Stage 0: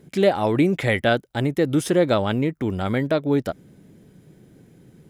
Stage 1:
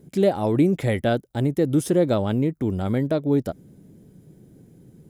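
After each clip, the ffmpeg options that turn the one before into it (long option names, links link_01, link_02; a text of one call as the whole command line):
ffmpeg -i in.wav -af "equalizer=frequency=2100:width=0.41:gain=-10.5,volume=1.5dB" out.wav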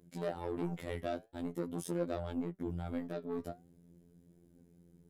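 ffmpeg -i in.wav -af "asoftclip=type=tanh:threshold=-18dB,afftfilt=real='hypot(re,im)*cos(PI*b)':imag='0':win_size=2048:overlap=0.75,flanger=delay=2.6:depth=7.6:regen=79:speed=0.45:shape=triangular,volume=-5.5dB" out.wav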